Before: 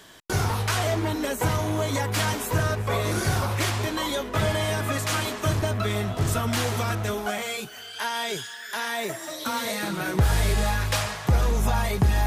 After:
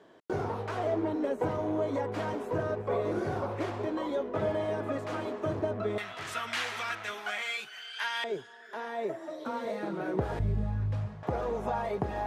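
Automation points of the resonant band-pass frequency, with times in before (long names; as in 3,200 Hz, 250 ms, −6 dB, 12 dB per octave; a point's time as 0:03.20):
resonant band-pass, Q 1.2
440 Hz
from 0:05.98 2,100 Hz
from 0:08.24 450 Hz
from 0:10.39 130 Hz
from 0:11.23 550 Hz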